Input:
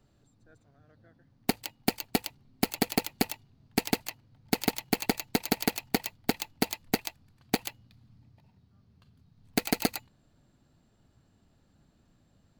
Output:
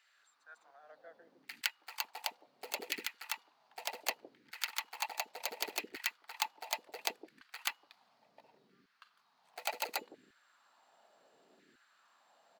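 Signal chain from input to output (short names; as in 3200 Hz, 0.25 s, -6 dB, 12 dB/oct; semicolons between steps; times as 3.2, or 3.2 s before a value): HPF 150 Hz 24 dB/oct; high shelf 5700 Hz -7 dB; auto swell 0.165 s; LFO high-pass saw down 0.69 Hz 350–2000 Hz; bands offset in time highs, lows 0.16 s, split 400 Hz; gain +5.5 dB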